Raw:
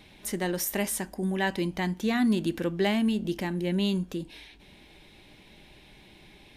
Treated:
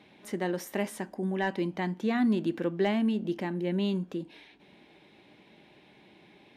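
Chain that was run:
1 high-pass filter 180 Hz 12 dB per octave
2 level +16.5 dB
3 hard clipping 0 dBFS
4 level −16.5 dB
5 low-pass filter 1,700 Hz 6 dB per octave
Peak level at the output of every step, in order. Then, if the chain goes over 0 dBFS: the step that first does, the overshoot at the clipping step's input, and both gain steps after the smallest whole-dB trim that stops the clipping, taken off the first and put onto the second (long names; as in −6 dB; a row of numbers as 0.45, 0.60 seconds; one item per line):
−12.5, +4.0, 0.0, −16.5, −17.0 dBFS
step 2, 4.0 dB
step 2 +12.5 dB, step 4 −12.5 dB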